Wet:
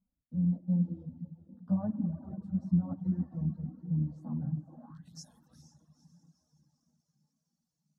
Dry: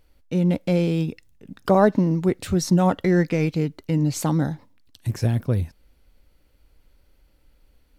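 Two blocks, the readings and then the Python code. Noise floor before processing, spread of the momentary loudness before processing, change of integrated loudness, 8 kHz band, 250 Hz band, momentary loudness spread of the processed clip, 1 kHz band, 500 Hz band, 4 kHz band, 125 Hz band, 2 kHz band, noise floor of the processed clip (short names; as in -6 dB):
-60 dBFS, 11 LU, -11.5 dB, under -20 dB, -10.5 dB, 20 LU, -27.0 dB, -29.0 dB, under -20 dB, -10.5 dB, under -35 dB, -85 dBFS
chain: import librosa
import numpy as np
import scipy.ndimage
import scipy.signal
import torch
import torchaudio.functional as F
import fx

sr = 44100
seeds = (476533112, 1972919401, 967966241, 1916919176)

p1 = fx.octave_divider(x, sr, octaves=1, level_db=-5.0)
p2 = fx.peak_eq(p1, sr, hz=2900.0, db=-7.5, octaves=0.48)
p3 = fx.fixed_phaser(p2, sr, hz=950.0, stages=4)
p4 = fx.rev_spring(p3, sr, rt60_s=2.1, pass_ms=(51, 59), chirp_ms=40, drr_db=4.5)
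p5 = fx.filter_sweep_bandpass(p4, sr, from_hz=210.0, to_hz=6400.0, start_s=4.63, end_s=5.2, q=4.1)
p6 = p5 + fx.echo_diffused(p5, sr, ms=471, feedback_pct=51, wet_db=-13.0, dry=0)
p7 = fx.chorus_voices(p6, sr, voices=4, hz=0.3, base_ms=16, depth_ms=4.7, mix_pct=65)
y = fx.dereverb_blind(p7, sr, rt60_s=0.82)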